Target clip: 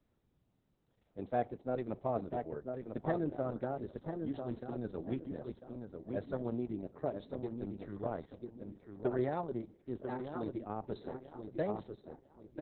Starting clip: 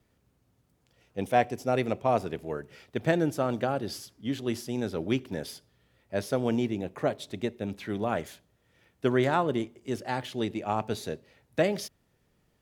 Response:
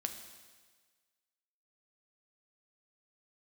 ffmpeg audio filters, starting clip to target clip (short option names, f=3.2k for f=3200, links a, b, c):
-filter_complex "[0:a]equalizer=f=2.7k:t=o:w=1.4:g=-15,asplit=2[a][b];[b]adelay=995,lowpass=f=2.3k:p=1,volume=-5dB,asplit=2[c][d];[d]adelay=995,lowpass=f=2.3k:p=1,volume=0.3,asplit=2[e][f];[f]adelay=995,lowpass=f=2.3k:p=1,volume=0.3,asplit=2[g][h];[h]adelay=995,lowpass=f=2.3k:p=1,volume=0.3[i];[a][c][e][g][i]amix=inputs=5:normalize=0,volume=-7.5dB" -ar 48000 -c:a libopus -b:a 6k